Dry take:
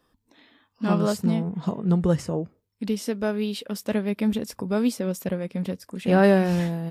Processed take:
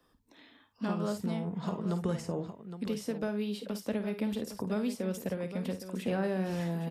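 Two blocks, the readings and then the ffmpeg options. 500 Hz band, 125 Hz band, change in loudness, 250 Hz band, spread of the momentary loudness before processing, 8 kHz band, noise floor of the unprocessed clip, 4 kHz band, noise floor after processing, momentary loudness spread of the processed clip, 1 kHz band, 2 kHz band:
-10.0 dB, -10.0 dB, -10.0 dB, -9.5 dB, 12 LU, -8.5 dB, -75 dBFS, -8.5 dB, -69 dBFS, 5 LU, -10.5 dB, -11.0 dB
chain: -filter_complex "[0:a]acrossover=split=90|380|1100[a][b][c][d];[a]acompressor=threshold=-57dB:ratio=4[e];[b]acompressor=threshold=-33dB:ratio=4[f];[c]acompressor=threshold=-36dB:ratio=4[g];[d]acompressor=threshold=-44dB:ratio=4[h];[e][f][g][h]amix=inputs=4:normalize=0,aecho=1:1:53|812:0.299|0.282,volume=-2dB"

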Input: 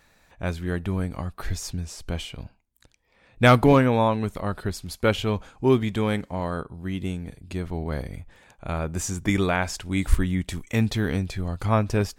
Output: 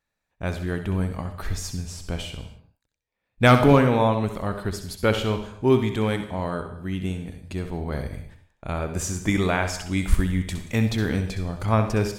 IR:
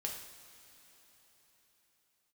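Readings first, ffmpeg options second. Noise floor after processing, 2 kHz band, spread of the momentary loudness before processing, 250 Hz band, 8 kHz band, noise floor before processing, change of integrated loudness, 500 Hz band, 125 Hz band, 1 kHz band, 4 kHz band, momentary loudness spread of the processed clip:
-81 dBFS, +0.5 dB, 14 LU, +0.5 dB, +1.0 dB, -62 dBFS, +1.0 dB, +1.0 dB, +1.0 dB, +0.5 dB, +1.0 dB, 14 LU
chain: -filter_complex "[0:a]agate=range=-22dB:threshold=-47dB:ratio=16:detection=peak,asplit=2[a][b];[1:a]atrim=start_sample=2205,afade=t=out:st=0.27:d=0.01,atrim=end_sample=12348,adelay=64[c];[b][c]afir=irnorm=-1:irlink=0,volume=-7dB[d];[a][d]amix=inputs=2:normalize=0"

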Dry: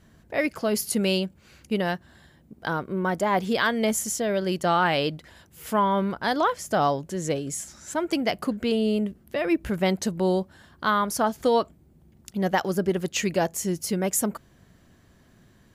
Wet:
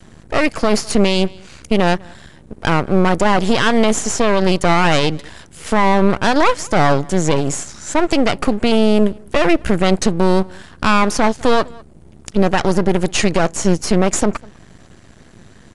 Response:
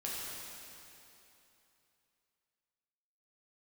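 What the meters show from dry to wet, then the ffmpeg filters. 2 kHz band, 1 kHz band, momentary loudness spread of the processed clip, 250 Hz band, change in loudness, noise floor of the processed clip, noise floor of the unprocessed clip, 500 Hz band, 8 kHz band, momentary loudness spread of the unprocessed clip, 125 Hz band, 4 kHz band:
+9.0 dB, +8.0 dB, 7 LU, +10.0 dB, +9.0 dB, -44 dBFS, -58 dBFS, +9.0 dB, +7.0 dB, 8 LU, +11.5 dB, +9.5 dB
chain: -filter_complex "[0:a]acrossover=split=7400[a][b];[a]aeval=exprs='max(val(0),0)':c=same[c];[b]acompressor=threshold=-50dB:ratio=6[d];[c][d]amix=inputs=2:normalize=0,asplit=2[e][f];[f]adelay=198.3,volume=-29dB,highshelf=f=4k:g=-4.46[g];[e][g]amix=inputs=2:normalize=0,aresample=22050,aresample=44100,alimiter=level_in=17.5dB:limit=-1dB:release=50:level=0:latency=1,volume=-1dB"

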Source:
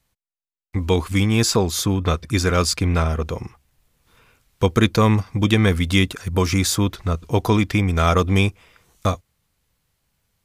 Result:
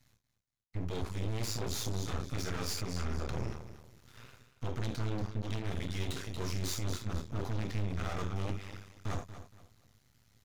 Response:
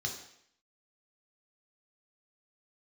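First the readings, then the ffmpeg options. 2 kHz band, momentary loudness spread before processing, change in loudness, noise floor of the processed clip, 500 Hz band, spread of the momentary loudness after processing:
-19.5 dB, 9 LU, -18.0 dB, -79 dBFS, -19.5 dB, 15 LU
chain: -filter_complex "[0:a]areverse,acompressor=threshold=-31dB:ratio=12,areverse[a];[1:a]atrim=start_sample=2205,afade=t=out:st=0.14:d=0.01,atrim=end_sample=6615[b];[a][b]afir=irnorm=-1:irlink=0,aeval=exprs='0.211*(cos(1*acos(clip(val(0)/0.211,-1,1)))-cos(1*PI/2))+0.0668*(cos(4*acos(clip(val(0)/0.211,-1,1)))-cos(4*PI/2))+0.0596*(cos(5*acos(clip(val(0)/0.211,-1,1)))-cos(5*PI/2))':c=same,aecho=1:1:234|468|702:0.251|0.0728|0.0211,aeval=exprs='max(val(0),0)':c=same,volume=-5.5dB"

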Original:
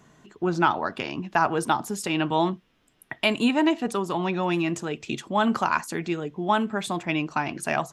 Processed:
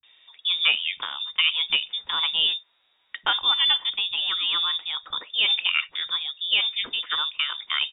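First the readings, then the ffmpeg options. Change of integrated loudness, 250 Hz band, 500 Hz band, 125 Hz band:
+3.0 dB, under -30 dB, -22.0 dB, under -25 dB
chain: -filter_complex "[0:a]lowpass=f=3.2k:t=q:w=0.5098,lowpass=f=3.2k:t=q:w=0.6013,lowpass=f=3.2k:t=q:w=0.9,lowpass=f=3.2k:t=q:w=2.563,afreqshift=-3800,acrossover=split=170[a][b];[b]adelay=30[c];[a][c]amix=inputs=2:normalize=0"

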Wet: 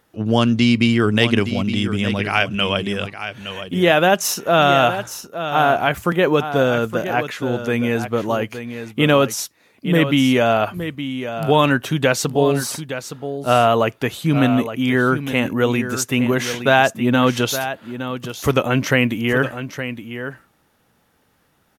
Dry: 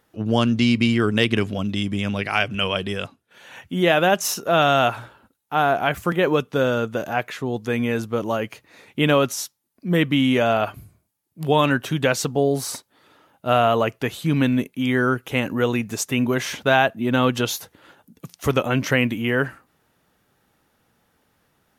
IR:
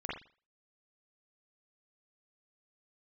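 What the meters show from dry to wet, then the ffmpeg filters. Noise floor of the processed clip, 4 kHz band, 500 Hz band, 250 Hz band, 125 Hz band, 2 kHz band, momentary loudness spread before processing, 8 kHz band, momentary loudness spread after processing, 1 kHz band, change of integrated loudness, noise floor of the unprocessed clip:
-62 dBFS, +3.5 dB, +3.5 dB, +3.5 dB, +3.5 dB, +3.5 dB, 10 LU, +3.5 dB, 12 LU, +3.5 dB, +3.0 dB, -69 dBFS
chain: -af "aecho=1:1:866:0.299,volume=3dB"

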